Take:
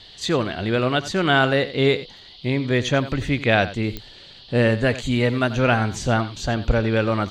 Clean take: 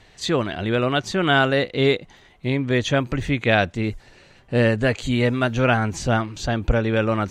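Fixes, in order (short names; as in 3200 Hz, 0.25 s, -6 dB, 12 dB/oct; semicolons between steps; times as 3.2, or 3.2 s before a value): de-click; noise print and reduce 6 dB; inverse comb 89 ms -15 dB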